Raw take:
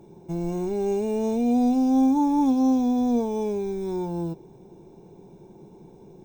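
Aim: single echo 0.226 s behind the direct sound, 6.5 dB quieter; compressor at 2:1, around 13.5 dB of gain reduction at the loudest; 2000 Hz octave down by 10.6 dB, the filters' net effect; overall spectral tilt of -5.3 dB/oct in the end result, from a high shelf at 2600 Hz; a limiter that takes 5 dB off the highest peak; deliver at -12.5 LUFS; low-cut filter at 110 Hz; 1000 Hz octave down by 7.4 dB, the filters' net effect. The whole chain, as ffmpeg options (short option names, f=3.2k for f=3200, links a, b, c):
-af "highpass=110,equalizer=f=1k:t=o:g=-8,equalizer=f=2k:t=o:g=-7.5,highshelf=f=2.6k:g=-8.5,acompressor=threshold=-45dB:ratio=2,alimiter=level_in=10.5dB:limit=-24dB:level=0:latency=1,volume=-10.5dB,aecho=1:1:226:0.473,volume=27.5dB"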